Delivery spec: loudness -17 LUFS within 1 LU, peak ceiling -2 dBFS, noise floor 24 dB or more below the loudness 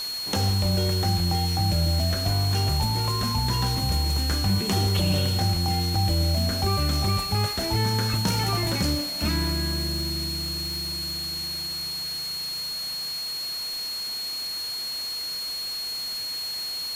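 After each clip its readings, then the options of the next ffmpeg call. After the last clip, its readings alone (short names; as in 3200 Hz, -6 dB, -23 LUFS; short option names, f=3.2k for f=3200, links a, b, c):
steady tone 4300 Hz; tone level -29 dBFS; noise floor -32 dBFS; noise floor target -49 dBFS; loudness -25.0 LUFS; peak -12.5 dBFS; loudness target -17.0 LUFS
-> -af "bandreject=f=4.3k:w=30"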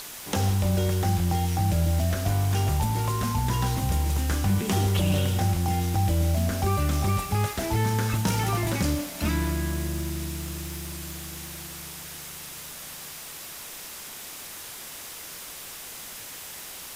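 steady tone none; noise floor -40 dBFS; noise floor target -52 dBFS
-> -af "afftdn=nr=12:nf=-40"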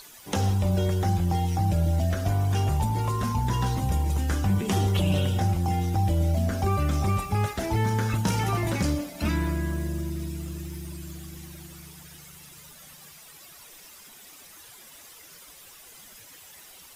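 noise floor -49 dBFS; noise floor target -50 dBFS
-> -af "afftdn=nr=6:nf=-49"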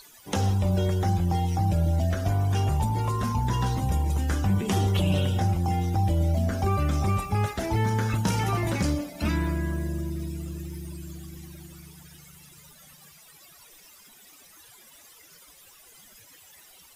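noise floor -53 dBFS; loudness -26.0 LUFS; peak -14.0 dBFS; loudness target -17.0 LUFS
-> -af "volume=9dB"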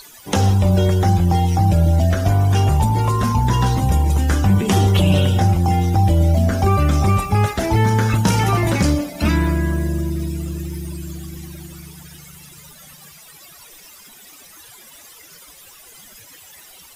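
loudness -17.0 LUFS; peak -5.0 dBFS; noise floor -44 dBFS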